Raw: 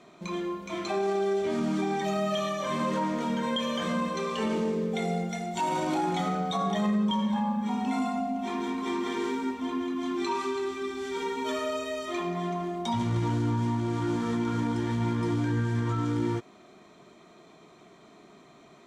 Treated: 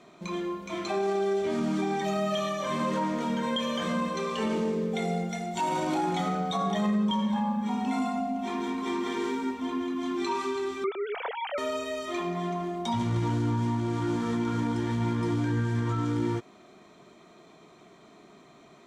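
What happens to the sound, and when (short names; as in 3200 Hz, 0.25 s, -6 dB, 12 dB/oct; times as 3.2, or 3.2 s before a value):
10.84–11.58 sine-wave speech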